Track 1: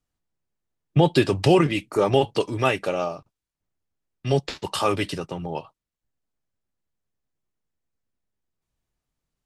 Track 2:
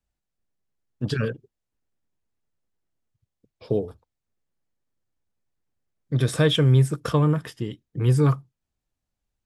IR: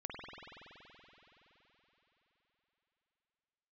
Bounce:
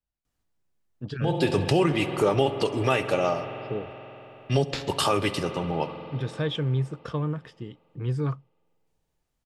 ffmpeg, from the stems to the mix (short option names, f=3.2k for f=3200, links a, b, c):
-filter_complex "[0:a]adelay=250,volume=1dB,asplit=3[a][b][c];[b]volume=-9.5dB[d];[c]volume=-21.5dB[e];[1:a]lowpass=4.9k,volume=-8.5dB,asplit=2[f][g];[g]apad=whole_len=427845[h];[a][h]sidechaincompress=threshold=-49dB:ratio=8:attack=16:release=265[i];[2:a]atrim=start_sample=2205[j];[d][j]afir=irnorm=-1:irlink=0[k];[e]aecho=0:1:68|136|204|272|340|408|476|544|612:1|0.57|0.325|0.185|0.106|0.0602|0.0343|0.0195|0.0111[l];[i][f][k][l]amix=inputs=4:normalize=0,alimiter=limit=-11.5dB:level=0:latency=1:release=277"